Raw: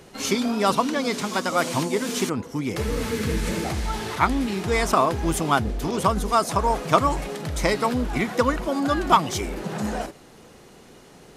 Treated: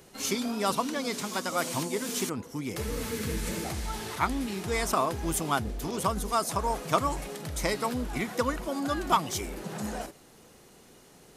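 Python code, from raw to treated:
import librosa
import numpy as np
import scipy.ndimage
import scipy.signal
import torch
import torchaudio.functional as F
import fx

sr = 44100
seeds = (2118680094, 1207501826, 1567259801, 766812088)

y = fx.high_shelf(x, sr, hz=7200.0, db=10.5)
y = y * librosa.db_to_amplitude(-7.5)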